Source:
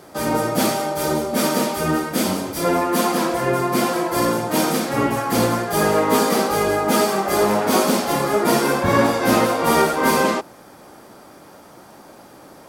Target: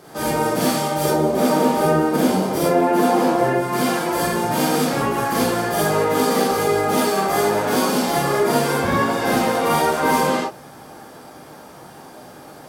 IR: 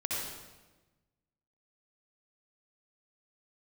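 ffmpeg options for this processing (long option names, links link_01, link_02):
-filter_complex "[0:a]asettb=1/sr,asplit=3[link_01][link_02][link_03];[link_01]atrim=end=1.054[link_04];[link_02]atrim=start=1.05:end=3.54,asetpts=PTS-STARTPTS,afade=type=in:duration=0.004:curve=qsin,afade=type=out:start_time=2.486:duration=0.004:curve=qsin,equalizer=frequency=430:width=0.35:gain=9.5[link_05];[link_03]atrim=start=3.536[link_06];[link_04][link_05]acrossfade=duration=0.004:curve1=hsin:curve2=qsin[link_07];[link_07][link_06]acrossfade=duration=0.004:curve1=qsin:curve2=hsin,acompressor=threshold=-19dB:ratio=4[link_08];[1:a]atrim=start_sample=2205,atrim=end_sample=6615,asetrate=66150,aresample=44100[link_09];[link_08][link_09]afir=irnorm=-1:irlink=0,volume=3dB"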